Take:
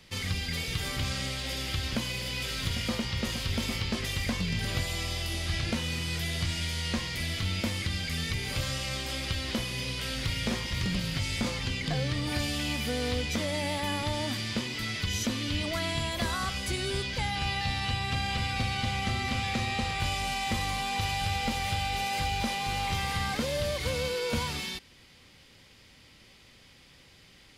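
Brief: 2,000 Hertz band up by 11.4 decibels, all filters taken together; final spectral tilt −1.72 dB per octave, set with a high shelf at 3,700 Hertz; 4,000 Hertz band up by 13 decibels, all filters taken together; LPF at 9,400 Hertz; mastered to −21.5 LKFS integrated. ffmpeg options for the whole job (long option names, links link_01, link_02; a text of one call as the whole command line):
ffmpeg -i in.wav -af "lowpass=9400,equalizer=frequency=2000:width_type=o:gain=8.5,highshelf=frequency=3700:gain=7.5,equalizer=frequency=4000:width_type=o:gain=9,volume=-0.5dB" out.wav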